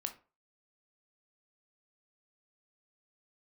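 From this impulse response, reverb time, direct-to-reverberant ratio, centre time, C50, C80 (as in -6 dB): 0.35 s, 5.5 dB, 9 ms, 13.0 dB, 19.0 dB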